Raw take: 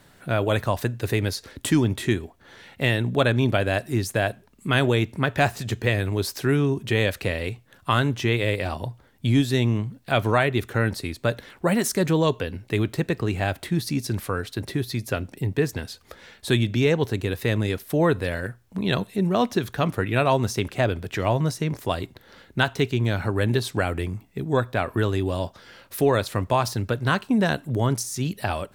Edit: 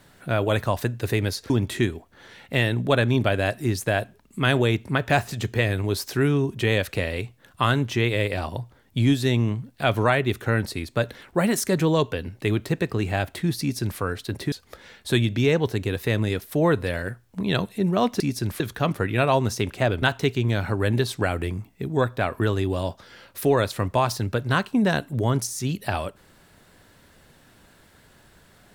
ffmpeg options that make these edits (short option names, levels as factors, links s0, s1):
-filter_complex "[0:a]asplit=6[s0][s1][s2][s3][s4][s5];[s0]atrim=end=1.502[s6];[s1]atrim=start=1.778:end=14.802[s7];[s2]atrim=start=15.898:end=19.582[s8];[s3]atrim=start=13.878:end=14.282[s9];[s4]atrim=start=19.578:end=21.002[s10];[s5]atrim=start=22.578[s11];[s6][s7]acrossfade=d=0.004:c1=hsin:c2=hsin[s12];[s12][s8]acrossfade=d=0.004:c1=hsin:c2=hsin[s13];[s13][s9]acrossfade=d=0.004:c1=hsin:c2=hsin[s14];[s14][s10]acrossfade=d=0.004:c1=hsin:c2=hsin[s15];[s15][s11]acrossfade=d=0.004:c1=hsin:c2=hsin"